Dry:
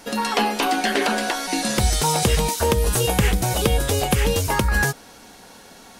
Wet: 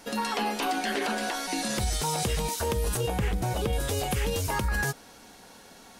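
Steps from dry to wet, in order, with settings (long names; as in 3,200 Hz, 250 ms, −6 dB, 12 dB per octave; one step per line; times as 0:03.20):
0:02.97–0:03.73: high-shelf EQ 2,800 Hz −9.5 dB
brickwall limiter −14 dBFS, peak gain reduction 5 dB
level −5.5 dB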